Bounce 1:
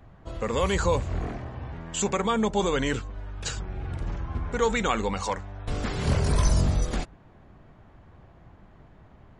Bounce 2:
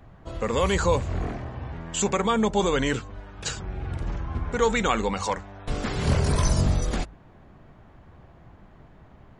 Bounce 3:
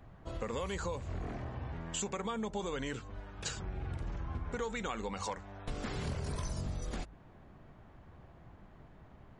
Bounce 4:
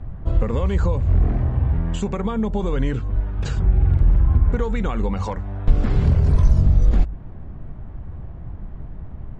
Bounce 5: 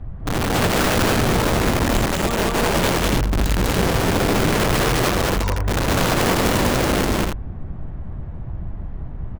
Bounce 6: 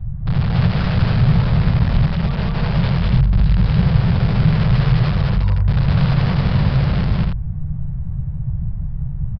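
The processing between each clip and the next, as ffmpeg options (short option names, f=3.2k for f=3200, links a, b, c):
-af "bandreject=f=50:t=h:w=6,bandreject=f=100:t=h:w=6,volume=2dB"
-af "acompressor=threshold=-29dB:ratio=6,volume=-5.5dB"
-af "aemphasis=mode=reproduction:type=riaa,volume=8.5dB"
-af "aeval=exprs='(mod(7.08*val(0)+1,2)-1)/7.08':c=same,aecho=1:1:142.9|201.2|285.7:0.282|1|0.631"
-af "lowshelf=f=210:t=q:w=3:g=11.5,aresample=11025,aresample=44100,volume=-7dB"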